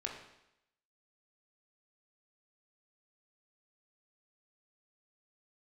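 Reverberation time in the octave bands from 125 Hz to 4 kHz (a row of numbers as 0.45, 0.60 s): 0.80, 0.80, 0.85, 0.85, 0.85, 0.85 s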